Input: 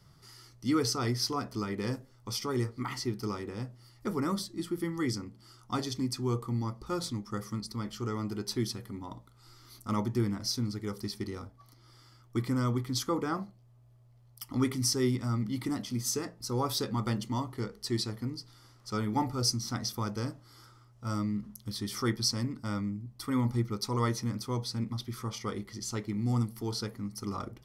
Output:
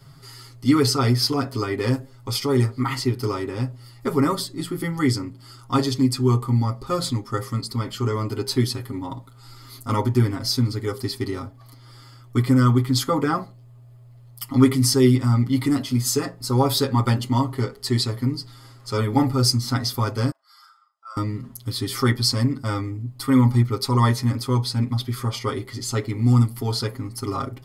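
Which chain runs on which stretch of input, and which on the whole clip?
20.31–21.17 spectral contrast raised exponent 1.6 + HPF 960 Hz 24 dB/oct + flutter echo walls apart 6.7 m, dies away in 0.28 s
whole clip: notch 5800 Hz, Q 5.5; comb 7.4 ms, depth 94%; gain +8 dB

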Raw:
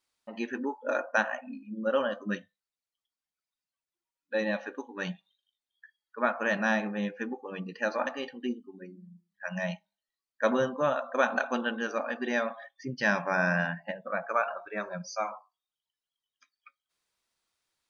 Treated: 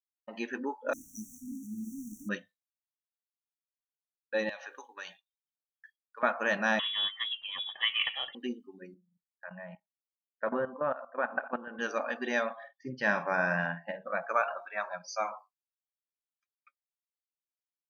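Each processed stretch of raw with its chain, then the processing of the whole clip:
0.93–2.29 zero-crossing step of -36.5 dBFS + brick-wall FIR band-stop 310–5600 Hz
4.49–6.23 HPF 640 Hz + high shelf 2600 Hz +7 dB + compressor 3:1, threshold -40 dBFS
6.79–8.35 block floating point 5-bit + inverted band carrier 3600 Hz
8.94–11.79 LPF 1900 Hz 24 dB/oct + level quantiser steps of 14 dB
12.53–14.15 LPF 2100 Hz 6 dB/oct + doubler 47 ms -11 dB
14.66–15.08 LPF 4900 Hz 24 dB/oct + resonant low shelf 550 Hz -11 dB, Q 3
whole clip: expander -47 dBFS; low shelf 240 Hz -8 dB

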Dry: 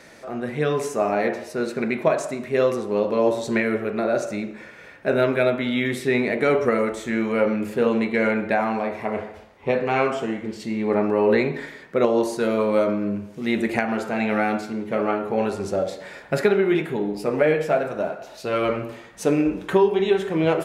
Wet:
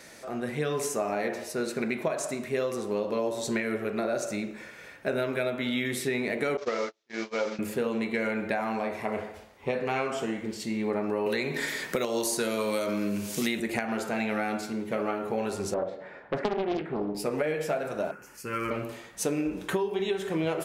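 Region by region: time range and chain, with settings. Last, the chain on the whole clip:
6.57–7.59 delta modulation 32 kbps, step -30.5 dBFS + gate -23 dBFS, range -42 dB + tone controls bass -13 dB, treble -2 dB
11.26–13.6 high shelf 2600 Hz +11 dB + three-band squash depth 70%
15.74–17.15 LPF 1500 Hz + low shelf 110 Hz -8 dB + Doppler distortion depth 0.7 ms
18.11–18.71 overloaded stage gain 15.5 dB + fixed phaser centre 1600 Hz, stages 4
whole clip: high shelf 4800 Hz +11 dB; compressor, threshold -21 dBFS; gain -4 dB

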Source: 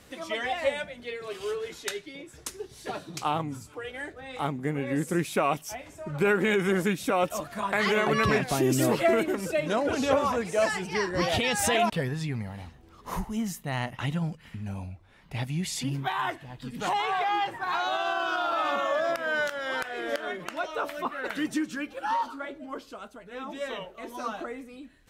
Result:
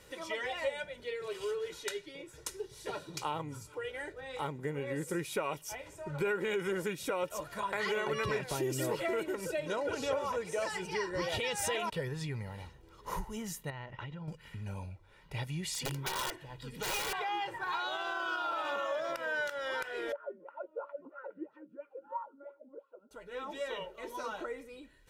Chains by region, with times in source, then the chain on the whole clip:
13.7–14.28 compressor 12:1, threshold -34 dBFS + air absorption 220 m
15.68–17.13 notches 60/120/180/240/300/360/420 Hz + wrapped overs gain 23.5 dB
20.12–23.11 air absorption 360 m + wah 3 Hz 220–1200 Hz, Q 7.7 + small resonant body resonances 550/1400/2600 Hz, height 11 dB
whole clip: bell 77 Hz -6.5 dB 0.53 oct; comb 2.1 ms, depth 59%; compressor 2:1, threshold -31 dBFS; gain -4 dB

